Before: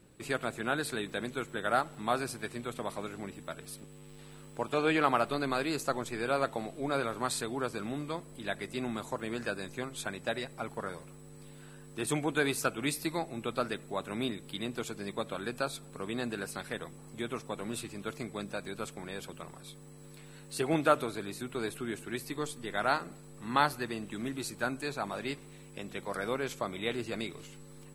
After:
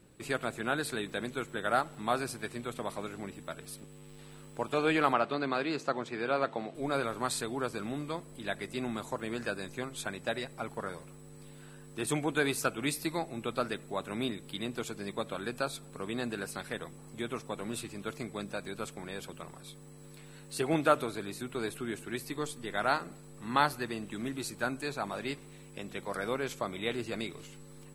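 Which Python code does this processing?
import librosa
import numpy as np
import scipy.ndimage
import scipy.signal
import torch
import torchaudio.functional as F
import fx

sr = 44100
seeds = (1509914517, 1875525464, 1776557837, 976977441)

y = fx.bandpass_edges(x, sr, low_hz=140.0, high_hz=4500.0, at=(5.13, 6.75))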